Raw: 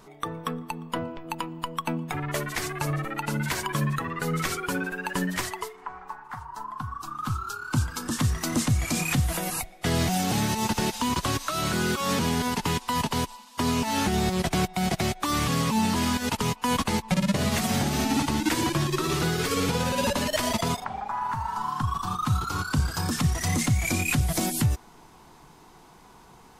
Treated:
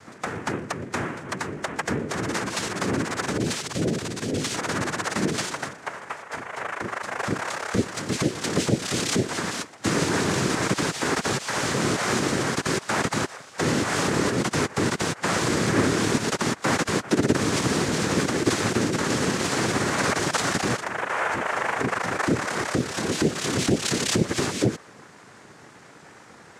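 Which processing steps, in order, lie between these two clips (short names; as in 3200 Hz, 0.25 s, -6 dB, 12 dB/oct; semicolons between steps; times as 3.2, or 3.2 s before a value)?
3.37–4.54 elliptic band-stop 280–1700 Hz; in parallel at -2.5 dB: limiter -25 dBFS, peak gain reduction 10.5 dB; on the sum: noise vocoder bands 3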